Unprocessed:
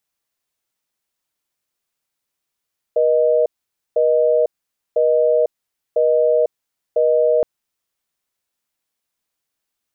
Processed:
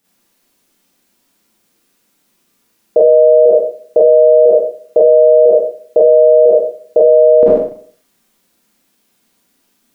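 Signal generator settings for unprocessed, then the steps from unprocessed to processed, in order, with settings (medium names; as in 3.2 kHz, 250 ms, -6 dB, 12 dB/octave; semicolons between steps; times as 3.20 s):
call progress tone busy tone, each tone -15 dBFS 4.47 s
peaking EQ 260 Hz +13.5 dB 1.2 oct; Schroeder reverb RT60 0.51 s, combs from 32 ms, DRR -7.5 dB; loudness maximiser +10 dB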